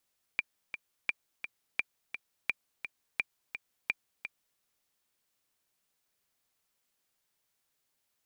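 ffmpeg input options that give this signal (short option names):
-f lavfi -i "aevalsrc='pow(10,(-15-9.5*gte(mod(t,2*60/171),60/171))/20)*sin(2*PI*2380*mod(t,60/171))*exp(-6.91*mod(t,60/171)/0.03)':d=4.21:s=44100"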